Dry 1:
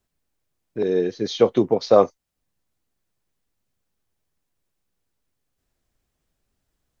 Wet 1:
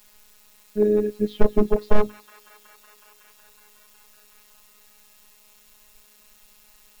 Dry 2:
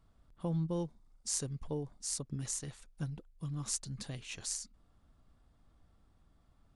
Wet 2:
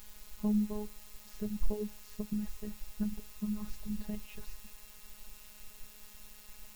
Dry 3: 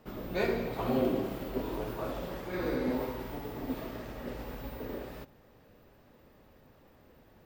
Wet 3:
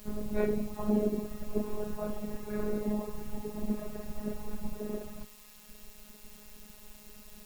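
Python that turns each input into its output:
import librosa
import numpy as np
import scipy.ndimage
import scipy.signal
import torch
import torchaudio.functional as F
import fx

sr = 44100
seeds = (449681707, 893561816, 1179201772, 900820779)

p1 = np.minimum(x, 2.0 * 10.0 ** (-12.0 / 20.0) - x)
p2 = scipy.signal.sosfilt(scipy.signal.butter(2, 3300.0, 'lowpass', fs=sr, output='sos'), p1)
p3 = fx.hum_notches(p2, sr, base_hz=50, count=9)
p4 = fx.dereverb_blind(p3, sr, rt60_s=1.5)
p5 = fx.tilt_eq(p4, sr, slope=-4.0)
p6 = fx.rider(p5, sr, range_db=3, speed_s=0.5)
p7 = p5 + F.gain(torch.from_numpy(p6), -2.5).numpy()
p8 = fx.quant_dither(p7, sr, seeds[0], bits=8, dither='triangular')
p9 = fx.robotise(p8, sr, hz=210.0)
p10 = p9 + fx.echo_wet_highpass(p9, sr, ms=185, feedback_pct=85, hz=1600.0, wet_db=-15.0, dry=0)
y = F.gain(torch.from_numpy(p10), -5.5).numpy()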